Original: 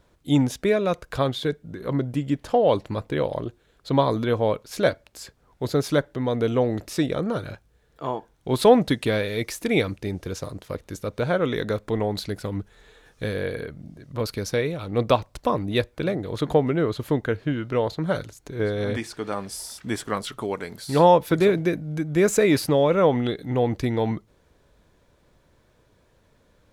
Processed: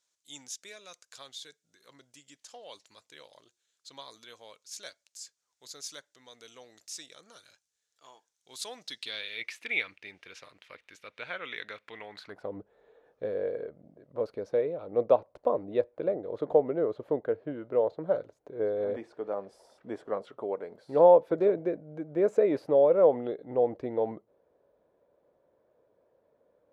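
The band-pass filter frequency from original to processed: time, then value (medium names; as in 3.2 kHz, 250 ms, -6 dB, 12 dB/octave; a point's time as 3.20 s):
band-pass filter, Q 2.4
8.74 s 6.6 kHz
9.46 s 2.4 kHz
12.07 s 2.4 kHz
12.51 s 550 Hz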